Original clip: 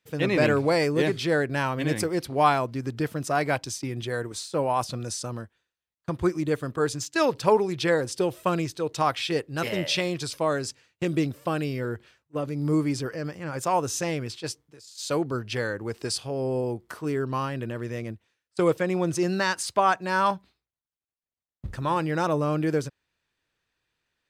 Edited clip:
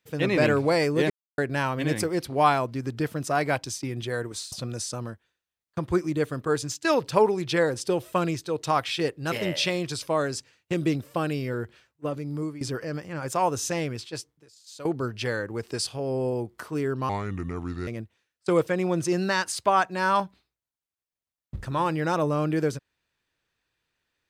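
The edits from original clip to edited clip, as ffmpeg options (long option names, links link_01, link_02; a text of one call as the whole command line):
ffmpeg -i in.wav -filter_complex "[0:a]asplit=8[link_01][link_02][link_03][link_04][link_05][link_06][link_07][link_08];[link_01]atrim=end=1.1,asetpts=PTS-STARTPTS,afade=type=out:start_time=1.096:duration=0.004:curve=hsin[link_09];[link_02]atrim=start=1.1:end=1.38,asetpts=PTS-STARTPTS,volume=0[link_10];[link_03]atrim=start=1.38:end=4.522,asetpts=PTS-STARTPTS,afade=type=in:duration=0.004:curve=hsin[link_11];[link_04]atrim=start=4.828:end=12.92,asetpts=PTS-STARTPTS,afade=type=out:start_time=7.532:duration=0.56:silence=0.149624[link_12];[link_05]atrim=start=12.92:end=15.16,asetpts=PTS-STARTPTS,afade=type=in:duration=0.004:curve=hsin:silence=0.149624,afade=type=out:start_time=1.26:duration=0.98:silence=0.188365[link_13];[link_06]atrim=start=15.16:end=17.404,asetpts=PTS-STARTPTS,afade=type=in:duration=0.004:curve=hsin:silence=0.188365[link_14];[link_07]atrim=start=17.4:end=17.98,asetpts=PTS-STARTPTS,asetrate=32634,aresample=44100[link_15];[link_08]atrim=start=17.976[link_16];[link_09][link_10][link_11]concat=n=3:v=0:a=1[link_17];[link_12][link_13][link_14]concat=n=3:v=0:a=1[link_18];[link_17][link_18]acrossfade=duration=0.004:curve1=hsin:curve2=hsin[link_19];[link_19][link_15]acrossfade=duration=0.004:curve1=hsin:curve2=hsin[link_20];[link_20][link_16]acrossfade=duration=0.004:curve1=hsin:curve2=hsin" out.wav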